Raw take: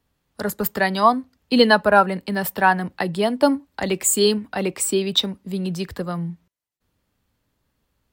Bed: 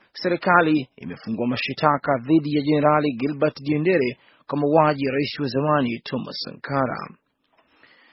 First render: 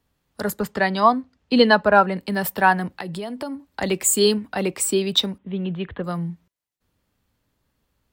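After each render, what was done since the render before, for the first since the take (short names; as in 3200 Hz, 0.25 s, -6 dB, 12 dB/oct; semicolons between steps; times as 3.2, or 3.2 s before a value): 0.59–2.17 air absorption 69 m; 3–3.65 compressor, threshold -27 dBFS; 5.38–6.04 elliptic low-pass 3400 Hz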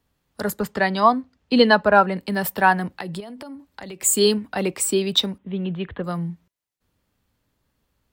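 3.2–4.03 compressor 5:1, threshold -34 dBFS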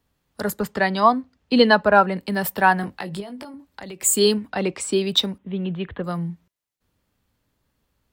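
2.81–3.54 doubler 20 ms -6 dB; 4.5–4.93 LPF 6400 Hz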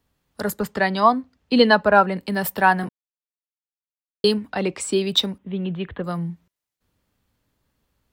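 2.89–4.24 mute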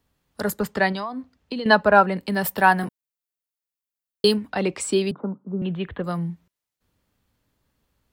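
0.92–1.66 compressor 20:1, threshold -25 dBFS; 2.58–4.36 high shelf 9800 Hz +9 dB; 5.11–5.62 Chebyshev band-pass 140–1400 Hz, order 5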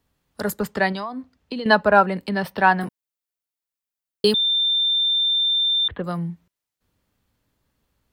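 2.29–2.81 polynomial smoothing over 15 samples; 4.34–5.88 bleep 3580 Hz -17 dBFS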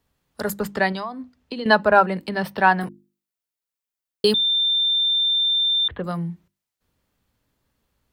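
notches 50/100/150/200/250/300/350 Hz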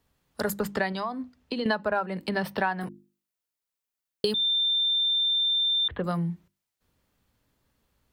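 compressor 8:1, threshold -23 dBFS, peak gain reduction 14 dB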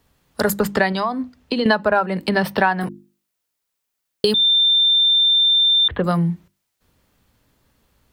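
gain +9.5 dB; limiter -1 dBFS, peak gain reduction 1.5 dB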